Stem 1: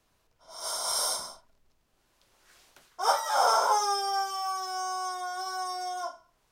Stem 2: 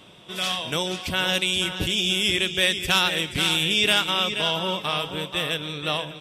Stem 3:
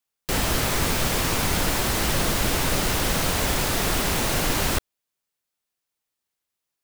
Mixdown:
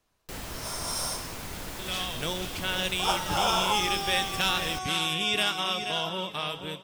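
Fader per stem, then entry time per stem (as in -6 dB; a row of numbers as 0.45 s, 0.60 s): -3.5 dB, -6.5 dB, -15.0 dB; 0.00 s, 1.50 s, 0.00 s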